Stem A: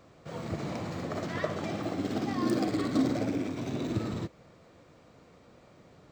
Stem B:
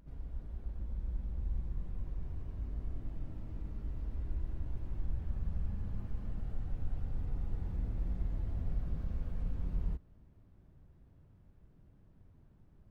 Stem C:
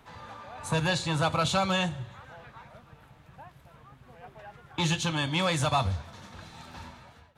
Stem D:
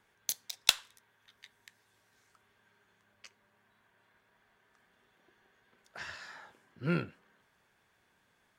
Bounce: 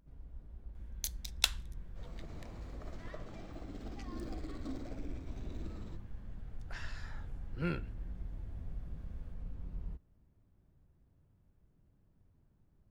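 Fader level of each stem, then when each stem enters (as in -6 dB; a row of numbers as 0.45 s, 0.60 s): -17.0 dB, -7.5 dB, mute, -4.5 dB; 1.70 s, 0.00 s, mute, 0.75 s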